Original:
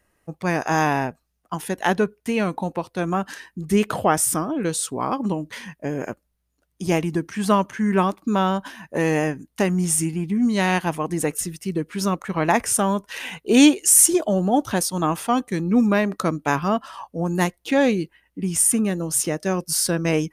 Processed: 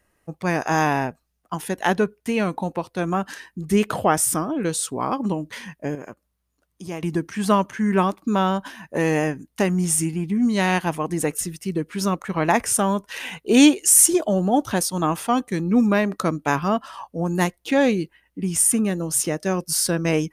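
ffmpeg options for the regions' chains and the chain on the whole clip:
ffmpeg -i in.wav -filter_complex "[0:a]asettb=1/sr,asplit=3[link_01][link_02][link_03];[link_01]atrim=end=5.954[link_04];[link_02]atrim=start=5.95:end=7.03,asetpts=PTS-STARTPTS,afade=type=in:duration=0.004:curve=qsin,afade=type=out:start_time=1.076:duration=0.004:curve=qsin,highpass=48,equalizer=frequency=1100:width_type=o:width=0.32:gain=5.5,acompressor=threshold=-47dB:ratio=1.5:attack=3.2:release=140:knee=1:detection=peak[link_05];[link_03]atrim=start=7.026[link_06];[link_04][link_05]acrossfade=duration=0.004:curve1=hsin:curve2=qsin[link_07];[link_07][link_06]acrossfade=duration=0.004:curve1=qsin:curve2=hsin" out.wav

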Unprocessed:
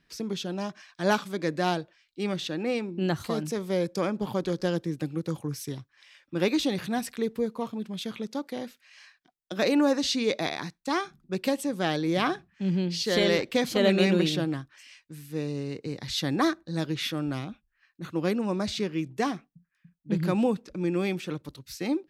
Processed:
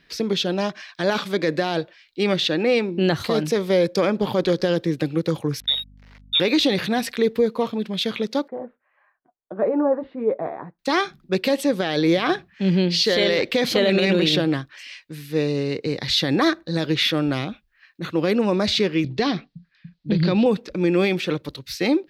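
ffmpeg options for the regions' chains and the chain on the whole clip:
ffmpeg -i in.wav -filter_complex "[0:a]asettb=1/sr,asplit=3[link_01][link_02][link_03];[link_01]atrim=end=5.604[link_04];[link_02]atrim=start=5.6:end=6.4,asetpts=PTS-STARTPTS,afade=type=in:duration=0.004:curve=qsin,afade=type=out:start_time=0.796:duration=0.004:curve=qsin,lowpass=frequency=3300:width_type=q:width=0.5098,lowpass=frequency=3300:width_type=q:width=0.6013,lowpass=frequency=3300:width_type=q:width=0.9,lowpass=frequency=3300:width_type=q:width=2.563,afreqshift=-3900,aeval=exprs='sgn(val(0))*max(abs(val(0))-0.002,0)':channel_layout=same,aeval=exprs='val(0)+0.002*(sin(2*PI*50*n/s)+sin(2*PI*2*50*n/s)/2+sin(2*PI*3*50*n/s)/3+sin(2*PI*4*50*n/s)/4+sin(2*PI*5*50*n/s)/5)':channel_layout=same[link_05];[link_03]atrim=start=6.396[link_06];[link_04][link_05]acrossfade=duration=0.004:curve1=hsin:curve2=qsin[link_07];[link_07][link_06]acrossfade=duration=0.004:curve1=qsin:curve2=hsin,asettb=1/sr,asplit=3[link_08][link_09][link_10];[link_08]atrim=end=8.484[link_11];[link_09]atrim=start=8.48:end=10.79,asetpts=PTS-STARTPTS,afade=type=in:duration=0.004:curve=qsin,afade=type=out:start_time=2.306:duration=0.004:curve=qsin,lowpass=frequency=1100:width=0.5412,lowpass=frequency=1100:width=1.3066,lowshelf=frequency=450:gain=-6.5,flanger=delay=4.8:depth=4.2:regen=-37:speed=1.7:shape=sinusoidal[link_12];[link_10]atrim=start=10.786[link_13];[link_11][link_12]acrossfade=duration=0.004:curve1=hsin:curve2=qsin[link_14];[link_14][link_13]acrossfade=duration=0.004:curve1=qsin:curve2=hsin,asettb=1/sr,asplit=3[link_15][link_16][link_17];[link_15]atrim=end=19.044[link_18];[link_16]atrim=start=19.04:end=20.46,asetpts=PTS-STARTPTS,afade=type=in:duration=0.004:curve=qsin,afade=type=out:start_time=1.416:duration=0.004:curve=qsin,acompressor=threshold=-33dB:ratio=2:attack=3.2:release=140:knee=1:detection=peak,lowpass=frequency=4400:width_type=q:width=3.2,lowshelf=frequency=270:gain=9.5[link_19];[link_17]atrim=start=20.456[link_20];[link_18][link_19]acrossfade=duration=0.004:curve1=hsin:curve2=qsin[link_21];[link_21][link_20]acrossfade=duration=0.004:curve1=qsin:curve2=hsin,equalizer=frequency=500:width_type=o:width=1:gain=6,equalizer=frequency=2000:width_type=o:width=1:gain=5,equalizer=frequency=4000:width_type=o:width=1:gain=7,equalizer=frequency=8000:width_type=o:width=1:gain=-5,alimiter=limit=-16.5dB:level=0:latency=1:release=29,volume=6.5dB" out.wav

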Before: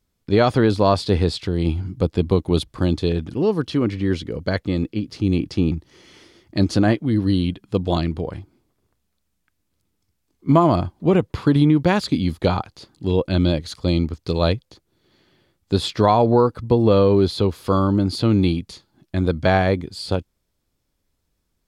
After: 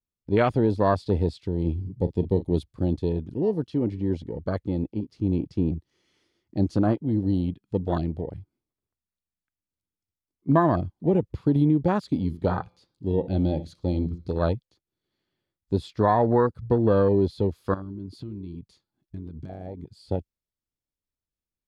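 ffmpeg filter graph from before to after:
ffmpeg -i in.wav -filter_complex "[0:a]asettb=1/sr,asplit=3[link_01][link_02][link_03];[link_01]atrim=end=1.764[link_04];[link_02]atrim=start=1.76:end=2.55,asetpts=PTS-STARTPTS,afade=type=in:duration=0.004:curve=qsin,afade=type=out:start_time=0.786:duration=0.004:curve=qsin,equalizer=frequency=1500:width=2:gain=-11.5,asplit=2[link_05][link_06];[link_06]adelay=40,volume=-13.5dB[link_07];[link_05][link_07]amix=inputs=2:normalize=0,atrim=end_sample=34839[link_08];[link_03]atrim=start=2.546[link_09];[link_04][link_08]acrossfade=duration=0.004:curve1=hsin:curve2=qsin[link_10];[link_10][link_09]acrossfade=duration=0.004:curve1=qsin:curve2=hsin,asettb=1/sr,asplit=3[link_11][link_12][link_13];[link_11]atrim=end=12.274[link_14];[link_12]atrim=start=12.27:end=14.38,asetpts=PTS-STARTPTS,afade=type=in:duration=0.004:curve=qsin,afade=type=out:start_time=2.106:duration=0.004:curve=qsin,bandreject=frequency=170.9:width_type=h:width=4,bandreject=frequency=341.8:width_type=h:width=4,bandreject=frequency=512.7:width_type=h:width=4,bandreject=frequency=683.6:width_type=h:width=4,bandreject=frequency=854.5:width_type=h:width=4,bandreject=frequency=1025.4:width_type=h:width=4,bandreject=frequency=1196.3:width_type=h:width=4,bandreject=frequency=1367.2:width_type=h:width=4,bandreject=frequency=1538.1:width_type=h:width=4,bandreject=frequency=1709:width_type=h:width=4,bandreject=frequency=1879.9:width_type=h:width=4,bandreject=frequency=2050.8:width_type=h:width=4,bandreject=frequency=2221.7:width_type=h:width=4,bandreject=frequency=2392.6:width_type=h:width=4,bandreject=frequency=2563.5:width_type=h:width=4,bandreject=frequency=2734.4:width_type=h:width=4,bandreject=frequency=2905.3:width_type=h:width=4,bandreject=frequency=3076.2:width_type=h:width=4,bandreject=frequency=3247.1:width_type=h:width=4,bandreject=frequency=3418:width_type=h:width=4,bandreject=frequency=3588.9:width_type=h:width=4,bandreject=frequency=3759.8:width_type=h:width=4,bandreject=frequency=3930.7:width_type=h:width=4,bandreject=frequency=4101.6:width_type=h:width=4,bandreject=frequency=4272.5:width_type=h:width=4,bandreject=frequency=4443.4:width_type=h:width=4,bandreject=frequency=4614.3:width_type=h:width=4,bandreject=frequency=4785.2:width_type=h:width=4,bandreject=frequency=4956.1:width_type=h:width=4,bandreject=frequency=5127:width_type=h:width=4,bandreject=frequency=5297.9:width_type=h:width=4,bandreject=frequency=5468.8:width_type=h:width=4,bandreject=frequency=5639.7:width_type=h:width=4,bandreject=frequency=5810.6:width_type=h:width=4,bandreject=frequency=5981.5:width_type=h:width=4,bandreject=frequency=6152.4:width_type=h:width=4,bandreject=frequency=6323.3:width_type=h:width=4,asplit=2[link_15][link_16];[link_16]adelay=72,lowpass=frequency=890:poles=1,volume=-15.5dB,asplit=2[link_17][link_18];[link_18]adelay=72,lowpass=frequency=890:poles=1,volume=0.43,asplit=2[link_19][link_20];[link_20]adelay=72,lowpass=frequency=890:poles=1,volume=0.43,asplit=2[link_21][link_22];[link_22]adelay=72,lowpass=frequency=890:poles=1,volume=0.43[link_23];[link_15][link_17][link_19][link_21][link_23]amix=inputs=5:normalize=0,atrim=end_sample=93051[link_24];[link_13]atrim=start=14.376[link_25];[link_14][link_24]acrossfade=duration=0.004:curve1=hsin:curve2=qsin[link_26];[link_26][link_25]acrossfade=duration=0.004:curve1=qsin:curve2=hsin,asettb=1/sr,asplit=3[link_27][link_28][link_29];[link_27]atrim=end=17.744[link_30];[link_28]atrim=start=17.74:end=19.93,asetpts=PTS-STARTPTS,afade=type=in:duration=0.004:curve=qsin,afade=type=out:start_time=2.186:duration=0.004:curve=qsin,acompressor=threshold=-26dB:ratio=12:attack=3.2:release=140:knee=1:detection=peak,aeval=exprs='0.0841*(abs(mod(val(0)/0.0841+3,4)-2)-1)':channel_layout=same[link_31];[link_29]atrim=start=19.926[link_32];[link_30][link_31]acrossfade=duration=0.004:curve1=hsin:curve2=qsin[link_33];[link_33][link_32]acrossfade=duration=0.004:curve1=qsin:curve2=hsin,afwtdn=0.0708,adynamicequalizer=threshold=0.0282:dfrequency=1600:dqfactor=0.7:tfrequency=1600:tqfactor=0.7:attack=5:release=100:ratio=0.375:range=2:mode=boostabove:tftype=highshelf,volume=-5dB" out.wav

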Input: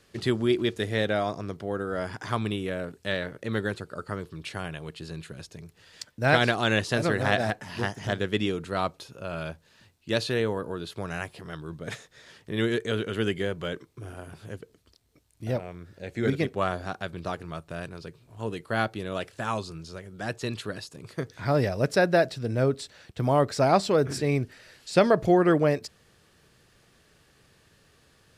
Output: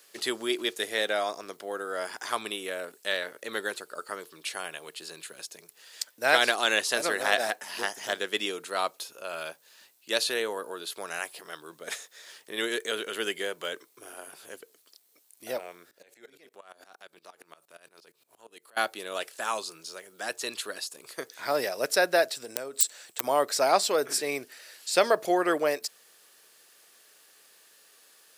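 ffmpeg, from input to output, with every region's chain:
ffmpeg -i in.wav -filter_complex "[0:a]asettb=1/sr,asplit=3[link_01][link_02][link_03];[link_01]atrim=end=15.914[link_04];[link_02]atrim=start=15.91:end=18.77,asetpts=PTS-STARTPTS,afade=type=in:duration=0.004:curve=qsin,afade=type=out:start_time=2.856:duration=0.004:curve=qsin,acompressor=threshold=-38dB:ratio=5:attack=3.2:release=140:knee=1:detection=peak,aeval=exprs='val(0)*pow(10,-20*if(lt(mod(-8.6*n/s,1),2*abs(-8.6)/1000),1-mod(-8.6*n/s,1)/(2*abs(-8.6)/1000),(mod(-8.6*n/s,1)-2*abs(-8.6)/1000)/(1-2*abs(-8.6)/1000))/20)':channel_layout=same[link_05];[link_03]atrim=start=18.766[link_06];[link_04][link_05]acrossfade=duration=0.004:curve1=hsin:curve2=qsin[link_07];[link_07][link_06]acrossfade=duration=0.004:curve1=qsin:curve2=hsin,asettb=1/sr,asplit=3[link_08][link_09][link_10];[link_08]atrim=end=22.354[link_11];[link_09]atrim=start=22.35:end=23.24,asetpts=PTS-STARTPTS,afade=type=in:duration=0.004:curve=qsin,afade=type=out:start_time=0.886:duration=0.004:curve=qsin,equalizer=frequency=7800:width_type=o:width=0.32:gain=12,acompressor=threshold=-28dB:ratio=12:attack=3.2:release=140:knee=1:detection=peak,aeval=exprs='(mod(15*val(0)+1,2)-1)/15':channel_layout=same[link_12];[link_10]atrim=start=23.236[link_13];[link_11][link_12]acrossfade=duration=0.004:curve1=hsin:curve2=qsin[link_14];[link_14][link_13]acrossfade=duration=0.004:curve1=qsin:curve2=hsin,highpass=390,aemphasis=mode=production:type=bsi" out.wav

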